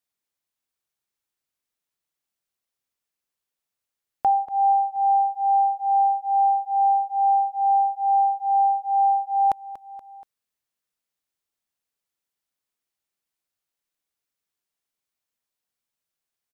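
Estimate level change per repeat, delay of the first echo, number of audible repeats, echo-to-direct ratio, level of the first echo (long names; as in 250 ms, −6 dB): −5.0 dB, 238 ms, 3, −14.0 dB, −15.5 dB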